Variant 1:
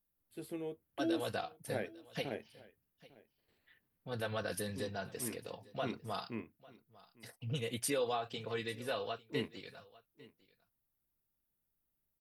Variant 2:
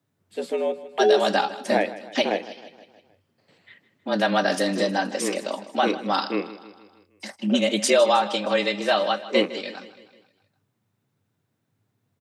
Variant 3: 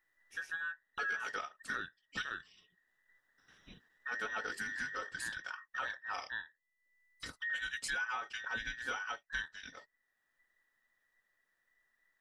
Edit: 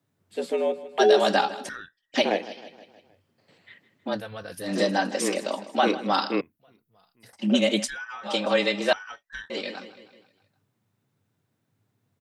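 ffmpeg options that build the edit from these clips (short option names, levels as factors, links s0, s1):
-filter_complex "[2:a]asplit=3[s0][s1][s2];[0:a]asplit=2[s3][s4];[1:a]asplit=6[s5][s6][s7][s8][s9][s10];[s5]atrim=end=1.692[s11];[s0]atrim=start=1.688:end=2.142[s12];[s6]atrim=start=2.138:end=4.23[s13];[s3]atrim=start=4.07:end=4.76[s14];[s7]atrim=start=4.6:end=6.412[s15];[s4]atrim=start=6.408:end=7.332[s16];[s8]atrim=start=7.328:end=7.88[s17];[s1]atrim=start=7.82:end=8.29[s18];[s9]atrim=start=8.23:end=8.932[s19];[s2]atrim=start=8.928:end=9.502[s20];[s10]atrim=start=9.498[s21];[s11][s12]acrossfade=d=0.004:c1=hsin:c2=hsin[s22];[s22][s13]acrossfade=d=0.004:c1=hsin:c2=hsin[s23];[s23][s14]acrossfade=d=0.16:c1=tri:c2=tri[s24];[s24][s15]acrossfade=d=0.16:c1=tri:c2=tri[s25];[s25][s16]acrossfade=d=0.004:c1=hsin:c2=hsin[s26];[s26][s17]acrossfade=d=0.004:c1=hsin:c2=hsin[s27];[s27][s18]acrossfade=d=0.06:c1=tri:c2=tri[s28];[s28][s19]acrossfade=d=0.06:c1=tri:c2=tri[s29];[s29][s20]acrossfade=d=0.004:c1=hsin:c2=hsin[s30];[s30][s21]acrossfade=d=0.004:c1=hsin:c2=hsin"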